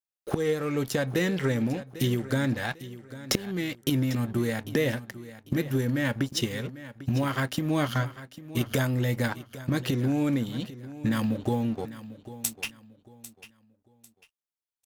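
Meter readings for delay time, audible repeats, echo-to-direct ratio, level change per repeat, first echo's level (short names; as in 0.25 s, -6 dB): 0.797 s, 2, -15.0 dB, -10.5 dB, -15.5 dB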